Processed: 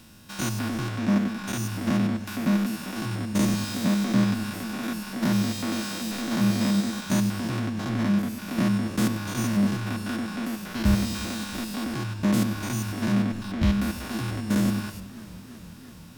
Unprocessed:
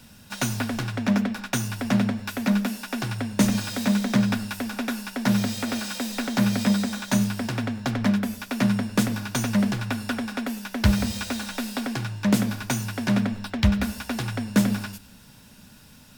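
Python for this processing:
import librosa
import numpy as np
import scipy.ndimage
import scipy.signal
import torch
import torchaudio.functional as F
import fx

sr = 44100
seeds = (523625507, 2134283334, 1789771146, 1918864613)

y = fx.spec_steps(x, sr, hold_ms=100)
y = fx.small_body(y, sr, hz=(330.0, 1100.0), ring_ms=85, db=11)
y = fx.echo_warbled(y, sr, ms=332, feedback_pct=79, rate_hz=2.8, cents=102, wet_db=-20)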